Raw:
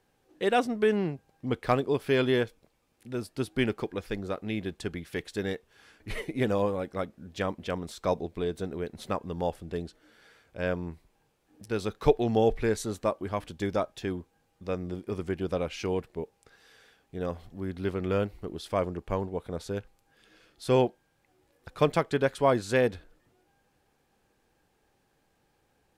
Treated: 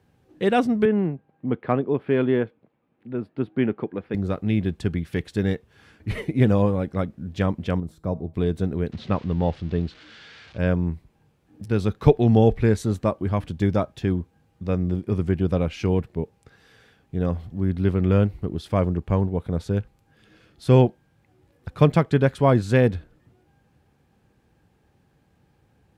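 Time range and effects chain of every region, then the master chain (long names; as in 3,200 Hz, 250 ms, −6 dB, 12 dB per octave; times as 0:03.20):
0:00.85–0:04.14: high-pass filter 220 Hz + high-frequency loss of the air 490 metres
0:07.80–0:08.34: parametric band 3,400 Hz −14.5 dB 2.9 octaves + tuned comb filter 160 Hz, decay 0.62 s, mix 40%
0:08.92–0:10.58: spike at every zero crossing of −31.5 dBFS + low-pass filter 4,200 Hz 24 dB per octave
whole clip: high-pass filter 66 Hz; bass and treble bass +13 dB, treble −5 dB; level +3 dB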